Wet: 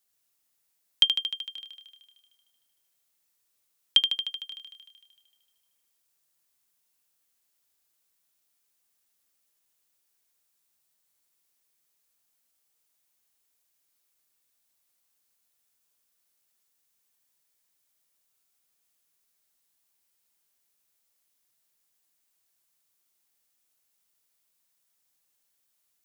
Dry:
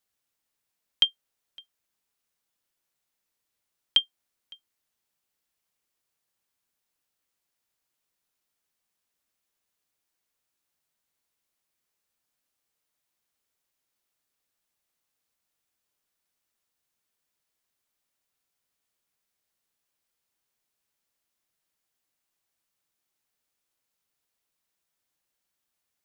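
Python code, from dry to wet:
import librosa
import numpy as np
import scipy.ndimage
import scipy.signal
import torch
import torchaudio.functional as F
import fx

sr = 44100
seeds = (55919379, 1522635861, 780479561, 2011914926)

y = fx.high_shelf(x, sr, hz=5100.0, db=9.0)
y = fx.echo_thinned(y, sr, ms=76, feedback_pct=73, hz=180.0, wet_db=-7.0)
y = F.gain(torch.from_numpy(y), -1.0).numpy()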